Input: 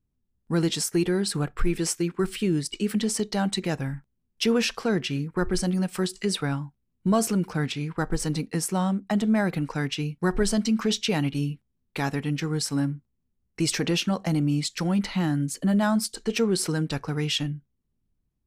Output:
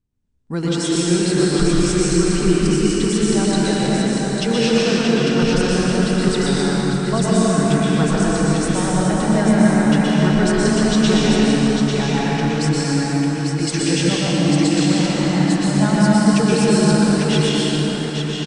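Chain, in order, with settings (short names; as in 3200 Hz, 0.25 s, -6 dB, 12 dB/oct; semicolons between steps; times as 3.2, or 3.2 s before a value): steep low-pass 9400 Hz 72 dB/oct; tapped delay 0.12/0.847 s -6/-4.5 dB; plate-style reverb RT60 4.5 s, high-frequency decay 0.6×, pre-delay 0.11 s, DRR -6.5 dB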